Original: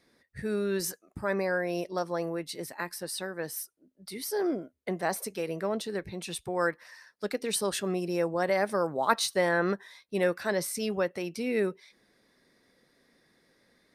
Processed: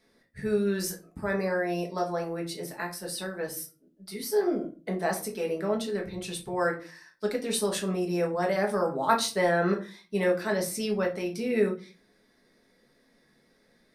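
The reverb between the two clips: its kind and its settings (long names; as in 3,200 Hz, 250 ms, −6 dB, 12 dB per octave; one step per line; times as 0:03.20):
rectangular room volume 180 cubic metres, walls furnished, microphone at 1.5 metres
level −2 dB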